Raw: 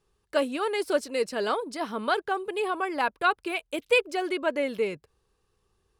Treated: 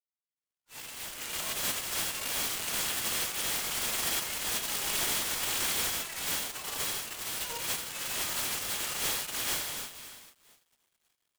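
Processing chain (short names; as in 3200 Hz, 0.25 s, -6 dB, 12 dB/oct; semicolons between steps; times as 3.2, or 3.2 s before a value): opening faded in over 0.68 s; Doppler pass-by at 2.3, 23 m/s, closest 12 m; compressor 8:1, threshold -32 dBFS, peak gain reduction 11 dB; limiter -32 dBFS, peak gain reduction 9.5 dB; AGC gain up to 6 dB; time stretch by phase-locked vocoder 1.9×; half-wave rectifier; reverb RT60 1.3 s, pre-delay 76 ms; inverted band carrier 3300 Hz; noise-modulated delay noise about 5000 Hz, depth 0.088 ms; gain +7 dB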